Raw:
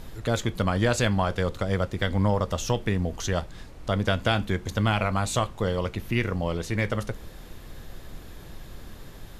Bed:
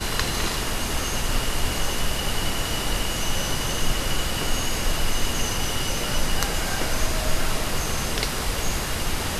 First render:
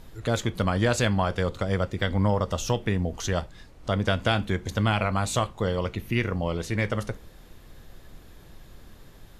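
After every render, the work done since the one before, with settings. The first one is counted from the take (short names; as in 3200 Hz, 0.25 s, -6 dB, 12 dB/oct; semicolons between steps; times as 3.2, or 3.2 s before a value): noise print and reduce 6 dB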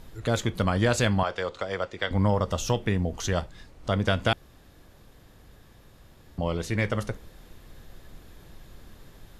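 1.23–2.11 three-band isolator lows -15 dB, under 380 Hz, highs -22 dB, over 7900 Hz; 4.33–6.38 room tone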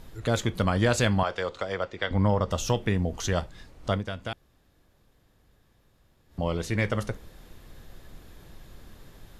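1.73–2.51 air absorption 59 m; 3.92–6.41 dip -10.5 dB, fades 0.12 s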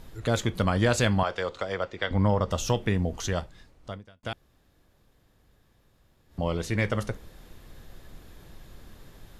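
3.09–4.23 fade out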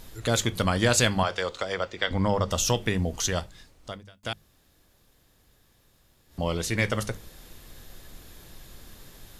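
high shelf 3100 Hz +10.5 dB; notches 50/100/150/200 Hz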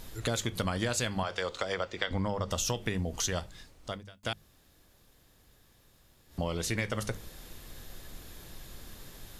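compressor 6:1, threshold -28 dBFS, peak gain reduction 11 dB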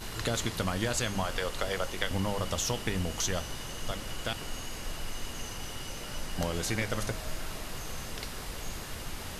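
add bed -14 dB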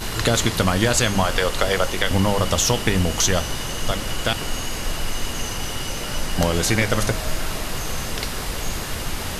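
gain +12 dB; limiter -3 dBFS, peak gain reduction 3 dB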